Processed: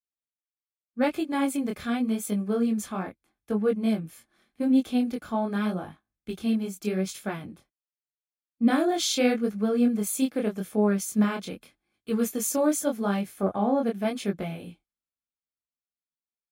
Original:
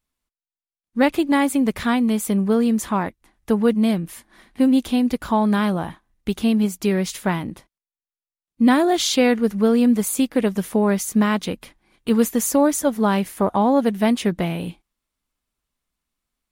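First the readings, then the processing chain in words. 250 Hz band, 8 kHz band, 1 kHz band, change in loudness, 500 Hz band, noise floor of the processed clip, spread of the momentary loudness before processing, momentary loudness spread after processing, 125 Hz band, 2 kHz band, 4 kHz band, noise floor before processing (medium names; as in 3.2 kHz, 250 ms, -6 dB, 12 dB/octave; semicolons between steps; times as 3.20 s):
-7.0 dB, -5.5 dB, -9.0 dB, -7.0 dB, -6.5 dB, under -85 dBFS, 10 LU, 13 LU, -7.5 dB, -8.5 dB, -7.0 dB, under -85 dBFS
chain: chorus 0.83 Hz, delay 19 ms, depth 7.6 ms; comb of notches 950 Hz; three bands expanded up and down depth 40%; trim -4 dB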